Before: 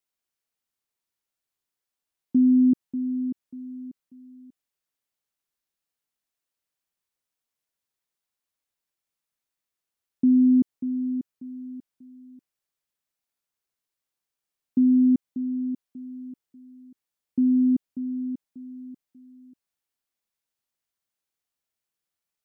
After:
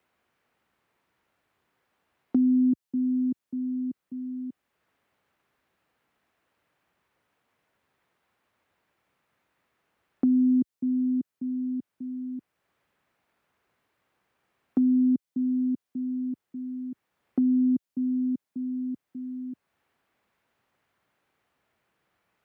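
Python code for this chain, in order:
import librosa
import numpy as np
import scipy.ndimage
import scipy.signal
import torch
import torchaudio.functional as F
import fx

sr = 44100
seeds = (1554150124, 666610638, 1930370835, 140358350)

y = scipy.signal.sosfilt(scipy.signal.butter(2, 64.0, 'highpass', fs=sr, output='sos'), x)
y = fx.band_squash(y, sr, depth_pct=70)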